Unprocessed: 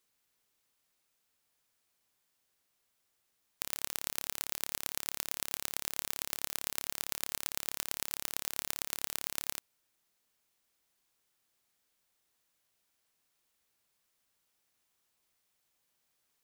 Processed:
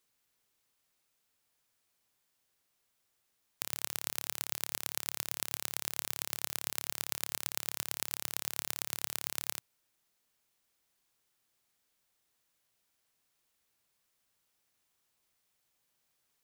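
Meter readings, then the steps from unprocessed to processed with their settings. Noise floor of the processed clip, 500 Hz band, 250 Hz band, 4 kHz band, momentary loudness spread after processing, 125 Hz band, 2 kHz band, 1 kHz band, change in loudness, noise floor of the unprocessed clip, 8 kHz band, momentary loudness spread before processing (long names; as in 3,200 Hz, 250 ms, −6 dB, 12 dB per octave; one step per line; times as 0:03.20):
−79 dBFS, 0.0 dB, 0.0 dB, 0.0 dB, 1 LU, +1.5 dB, 0.0 dB, 0.0 dB, 0.0 dB, −79 dBFS, 0.0 dB, 1 LU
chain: parametric band 120 Hz +3 dB 0.52 octaves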